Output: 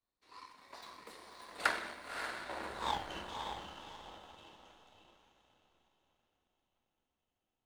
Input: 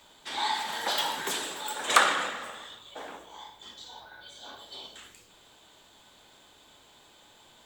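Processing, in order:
source passing by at 0:02.92, 54 m/s, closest 5.7 metres
spectral tilt −2.5 dB per octave
feedback delay with all-pass diffusion 566 ms, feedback 46%, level −3 dB
power curve on the samples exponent 1.4
level +16 dB

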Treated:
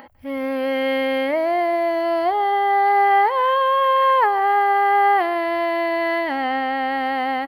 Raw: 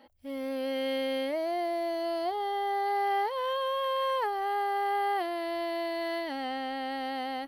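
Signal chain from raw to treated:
octave-band graphic EQ 125/1,000/2,000/4,000/8,000 Hz +9/+6/+7/−5/−9 dB
upward compression, threshold −48 dBFS
single-tap delay 149 ms −21 dB
level +8 dB

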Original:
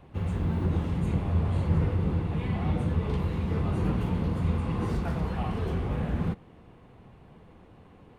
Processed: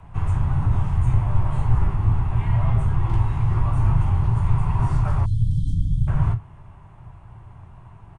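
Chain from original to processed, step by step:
downsampling to 22,050 Hz
on a send at −8 dB: convolution reverb RT60 0.20 s, pre-delay 15 ms
on the sum: frequency shifter −89 Hz
time-frequency box erased 0:05.25–0:06.08, 280–3,100 Hz
in parallel at +0.5 dB: speech leveller
on the sum: octave-band graphic EQ 125/250/500/1,000/2,000/4,000 Hz +11/−11/−11/+7/−4/−10 dB

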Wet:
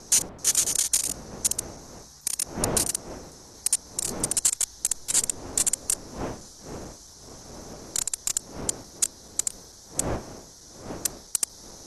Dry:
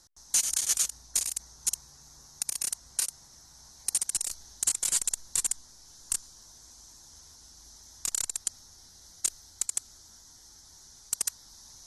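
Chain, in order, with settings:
slices reordered back to front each 221 ms, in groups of 2
wind on the microphone 550 Hz −44 dBFS
level +4.5 dB

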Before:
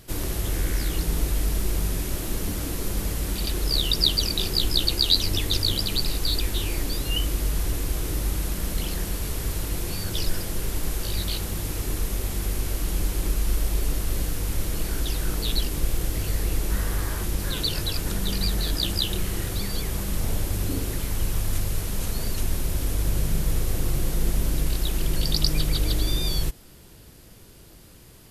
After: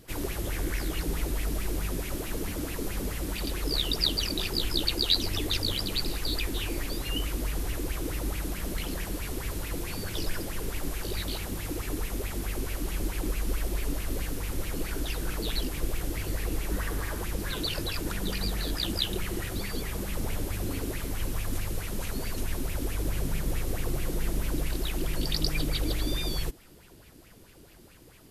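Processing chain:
auto-filter bell 4.6 Hz 250–2,600 Hz +13 dB
level −6.5 dB

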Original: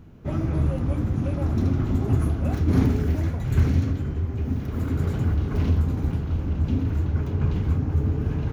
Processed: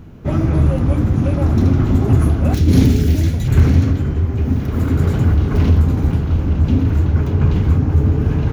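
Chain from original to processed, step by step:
0:02.54–0:03.48: drawn EQ curve 300 Hz 0 dB, 1,100 Hz −10 dB, 3,600 Hz +7 dB
in parallel at −4.5 dB: hard clipping −16.5 dBFS, distortion −17 dB
on the sum: level +5 dB

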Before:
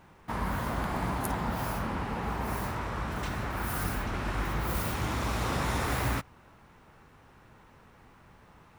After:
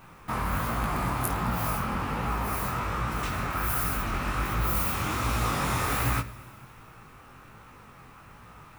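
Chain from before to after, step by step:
high-shelf EQ 7,900 Hz +11 dB
in parallel at +1.5 dB: downward compressor, threshold −37 dBFS, peak gain reduction 13 dB
on the sum: thirty-one-band graphic EQ 125 Hz +6 dB, 1,250 Hz +8 dB, 2,500 Hz +5 dB
delay with a high-pass on its return 107 ms, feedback 75%, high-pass 1,800 Hz, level −22 dB
on a send at −13 dB: convolution reverb RT60 0.95 s, pre-delay 4 ms
on the sum: chorus effect 1.3 Hz, delay 17 ms, depth 6.9 ms

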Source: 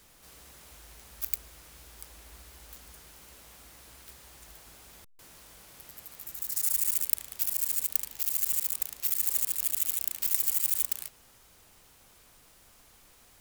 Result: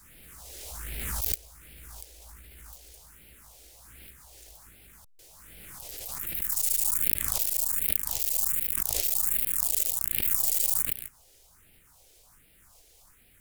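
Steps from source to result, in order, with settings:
gain on one half-wave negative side −3 dB
all-pass phaser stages 4, 1.3 Hz, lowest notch 180–1,100 Hz
background raised ahead of every attack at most 21 dB per second
level +1.5 dB

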